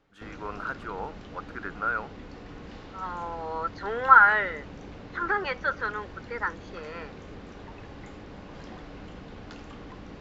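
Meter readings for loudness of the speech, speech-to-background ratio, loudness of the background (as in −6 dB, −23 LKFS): −25.0 LKFS, 19.5 dB, −44.5 LKFS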